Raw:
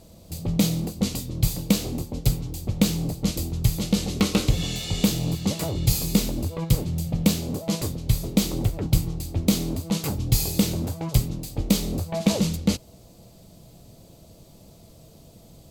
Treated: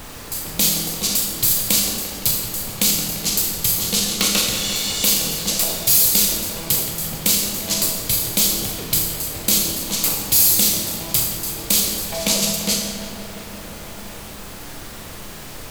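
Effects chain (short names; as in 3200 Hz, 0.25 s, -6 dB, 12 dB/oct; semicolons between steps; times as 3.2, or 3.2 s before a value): tilt +4 dB/oct; in parallel at +2.5 dB: level quantiser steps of 11 dB; on the sum: short-mantissa float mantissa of 2-bit; on a send: darkening echo 0.172 s, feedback 82%, low-pass 4500 Hz, level -10 dB; on the sum: added noise pink -33 dBFS; Schroeder reverb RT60 0.86 s, combs from 27 ms, DRR 2 dB; gain -4.5 dB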